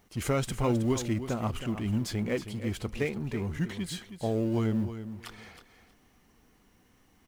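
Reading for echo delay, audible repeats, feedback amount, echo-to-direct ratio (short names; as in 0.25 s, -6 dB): 0.318 s, 2, 18%, -11.0 dB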